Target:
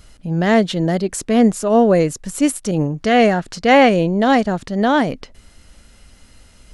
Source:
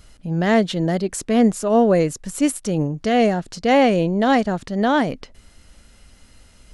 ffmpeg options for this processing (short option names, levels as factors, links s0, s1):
-filter_complex "[0:a]asettb=1/sr,asplit=3[s0][s1][s2];[s0]atrim=end=2.714[s3];[s1]atrim=start=2.71:end=3.89,asetpts=PTS-STARTPTS,afade=t=in:d=0.004:c=qsin,afade=t=out:st=1.176:d=0.004:c=qsin,adynamicequalizer=threshold=0.0224:dfrequency=1600:dqfactor=0.76:tfrequency=1600:tqfactor=0.76:attack=5:release=100:ratio=0.375:range=3:mode=boostabove:tftype=bell[s4];[s2]atrim=start=3.886[s5];[s3][s4]acrossfade=d=0.004:c1=hsin:c2=qsin[s6];[s6][s5]acrossfade=d=0.004:c1=qsin:c2=hsin,volume=1.33"